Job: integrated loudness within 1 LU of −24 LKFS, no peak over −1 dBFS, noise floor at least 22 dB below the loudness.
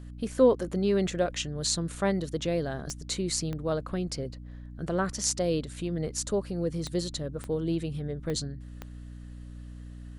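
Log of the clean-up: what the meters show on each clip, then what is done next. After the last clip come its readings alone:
number of clicks 6; mains hum 60 Hz; hum harmonics up to 300 Hz; level of the hum −41 dBFS; integrated loudness −30.0 LKFS; sample peak −9.0 dBFS; target loudness −24.0 LKFS
→ click removal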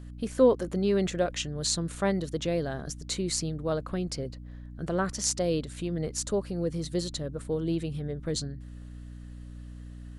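number of clicks 0; mains hum 60 Hz; hum harmonics up to 300 Hz; level of the hum −41 dBFS
→ mains-hum notches 60/120/180/240/300 Hz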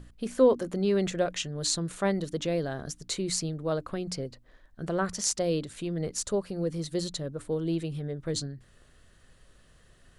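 mains hum none found; integrated loudness −30.0 LKFS; sample peak −9.0 dBFS; target loudness −24.0 LKFS
→ level +6 dB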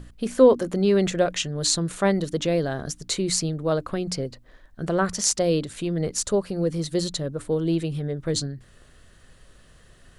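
integrated loudness −24.0 LKFS; sample peak −3.0 dBFS; background noise floor −53 dBFS

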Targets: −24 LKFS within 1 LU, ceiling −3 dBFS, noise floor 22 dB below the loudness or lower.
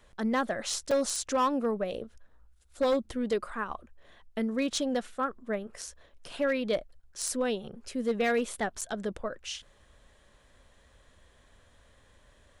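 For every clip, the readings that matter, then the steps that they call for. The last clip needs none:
share of clipped samples 0.5%; peaks flattened at −21.0 dBFS; number of dropouts 2; longest dropout 4.7 ms; integrated loudness −31.5 LKFS; sample peak −21.0 dBFS; target loudness −24.0 LKFS
→ clipped peaks rebuilt −21 dBFS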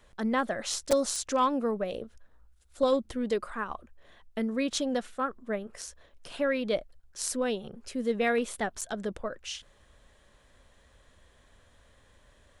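share of clipped samples 0.0%; number of dropouts 2; longest dropout 4.7 ms
→ repair the gap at 0:00.91/0:08.81, 4.7 ms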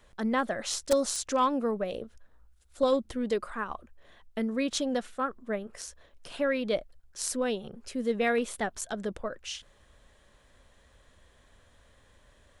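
number of dropouts 0; integrated loudness −31.0 LKFS; sample peak −12.0 dBFS; target loudness −24.0 LKFS
→ level +7 dB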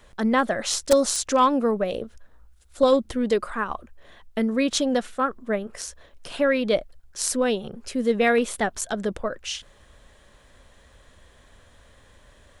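integrated loudness −24.0 LKFS; sample peak −5.0 dBFS; background noise floor −55 dBFS

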